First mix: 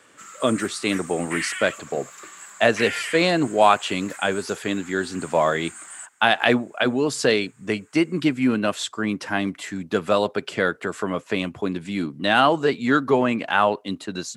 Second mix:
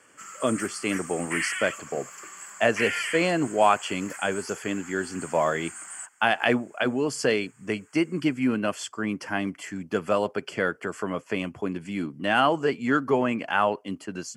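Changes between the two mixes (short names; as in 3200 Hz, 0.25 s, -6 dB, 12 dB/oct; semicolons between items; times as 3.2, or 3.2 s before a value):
speech -4.0 dB; master: add Butterworth band-stop 3800 Hz, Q 3.8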